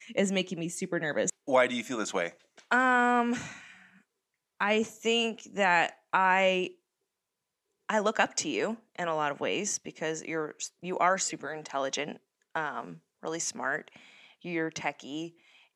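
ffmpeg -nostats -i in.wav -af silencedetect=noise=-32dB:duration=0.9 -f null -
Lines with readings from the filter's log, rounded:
silence_start: 3.45
silence_end: 4.60 | silence_duration: 1.15
silence_start: 6.67
silence_end: 7.89 | silence_duration: 1.22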